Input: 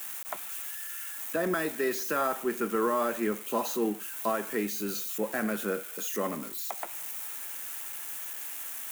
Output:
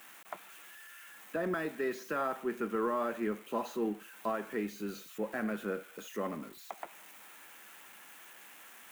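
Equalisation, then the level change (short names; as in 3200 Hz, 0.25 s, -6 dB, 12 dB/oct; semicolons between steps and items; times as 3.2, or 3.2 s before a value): tone controls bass +2 dB, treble -9 dB; high shelf 7800 Hz -5 dB; -5.0 dB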